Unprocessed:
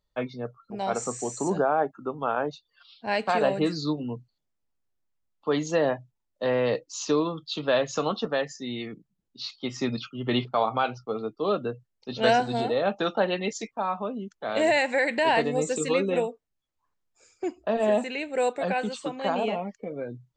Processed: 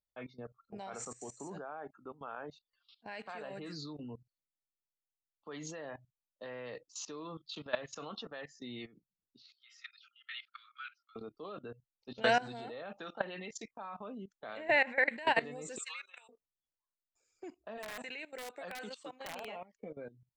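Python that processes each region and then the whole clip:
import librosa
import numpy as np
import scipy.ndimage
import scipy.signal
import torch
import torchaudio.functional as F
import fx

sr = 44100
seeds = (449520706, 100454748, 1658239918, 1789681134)

y = fx.chain(x, sr, fx.steep_highpass(hz=1300.0, slope=96),
    fx.air_absorb(metres=98.0), at=(9.42, 11.16))
y = fx.chain(y, sr, fx.lowpass(hz=2900.0, slope=12),
    fx.env_flatten(amount_pct=50), at=(14.57, 15.1))
y = fx.chain(y, sr, fx.highpass(hz=1200.0, slope=24),
    fx.notch(hz=1900.0, q=15.0), at=(15.78, 16.29))
y = fx.chain(y, sr, fx.highpass(hz=420.0, slope=6),
    fx.overflow_wrap(gain_db=19.0), at=(17.78, 19.75))
y = fx.dynamic_eq(y, sr, hz=1800.0, q=0.79, threshold_db=-40.0, ratio=4.0, max_db=7)
y = fx.level_steps(y, sr, step_db=18)
y = fx.high_shelf(y, sr, hz=7900.0, db=3.5)
y = y * librosa.db_to_amplitude(-8.0)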